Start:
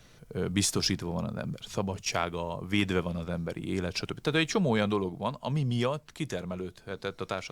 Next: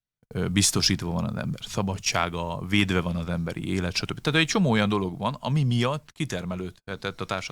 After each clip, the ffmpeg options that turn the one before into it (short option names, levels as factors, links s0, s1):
-af "equalizer=f=460:t=o:w=1.3:g=-5.5,agate=range=0.00631:threshold=0.00501:ratio=16:detection=peak,volume=2.11"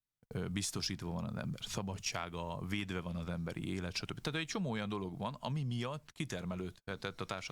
-af "acompressor=threshold=0.0282:ratio=4,volume=0.562"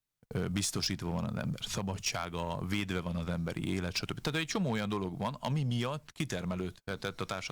-filter_complex "[0:a]asplit=2[s0][s1];[s1]acrusher=bits=4:mix=0:aa=0.5,volume=0.355[s2];[s0][s2]amix=inputs=2:normalize=0,volume=26.6,asoftclip=hard,volume=0.0376,volume=1.68"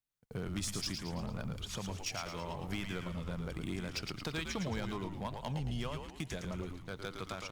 -filter_complex "[0:a]asplit=7[s0][s1][s2][s3][s4][s5][s6];[s1]adelay=111,afreqshift=-100,volume=0.531[s7];[s2]adelay=222,afreqshift=-200,volume=0.248[s8];[s3]adelay=333,afreqshift=-300,volume=0.117[s9];[s4]adelay=444,afreqshift=-400,volume=0.055[s10];[s5]adelay=555,afreqshift=-500,volume=0.026[s11];[s6]adelay=666,afreqshift=-600,volume=0.0122[s12];[s0][s7][s8][s9][s10][s11][s12]amix=inputs=7:normalize=0,volume=0.501"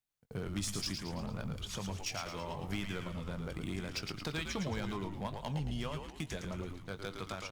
-filter_complex "[0:a]asplit=2[s0][s1];[s1]adelay=20,volume=0.251[s2];[s0][s2]amix=inputs=2:normalize=0"